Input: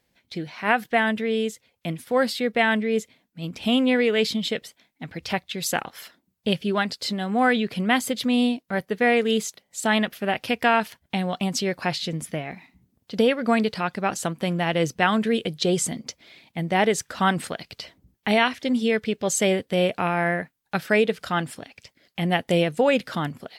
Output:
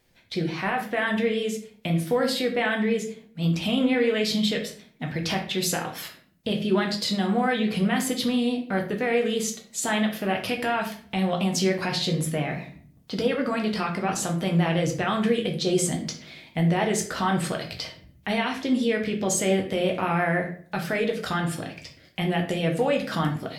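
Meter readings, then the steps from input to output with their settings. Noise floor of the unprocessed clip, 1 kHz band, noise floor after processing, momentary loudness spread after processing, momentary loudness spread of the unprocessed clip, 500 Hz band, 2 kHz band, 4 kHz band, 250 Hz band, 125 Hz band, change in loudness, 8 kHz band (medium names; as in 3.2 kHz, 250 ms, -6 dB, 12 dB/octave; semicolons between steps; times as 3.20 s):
-73 dBFS, -3.5 dB, -55 dBFS, 10 LU, 14 LU, -2.0 dB, -3.5 dB, -1.0 dB, -0.5 dB, +3.0 dB, -2.0 dB, +1.0 dB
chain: in parallel at +1.5 dB: compression, threshold -28 dBFS, peak gain reduction 13 dB; on the sum: peak limiter -13.5 dBFS, peak gain reduction 10 dB; vibrato 5.9 Hz 54 cents; simulated room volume 56 m³, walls mixed, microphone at 0.59 m; trim -4 dB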